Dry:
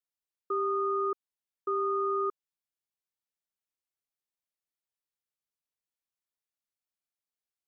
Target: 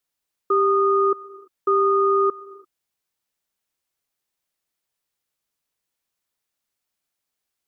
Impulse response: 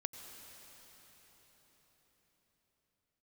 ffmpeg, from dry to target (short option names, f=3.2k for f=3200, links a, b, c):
-filter_complex "[0:a]asplit=2[a][b];[1:a]atrim=start_sample=2205,afade=t=out:st=0.39:d=0.01,atrim=end_sample=17640,asetrate=43218,aresample=44100[c];[b][c]afir=irnorm=-1:irlink=0,volume=-5.5dB[d];[a][d]amix=inputs=2:normalize=0,volume=8.5dB"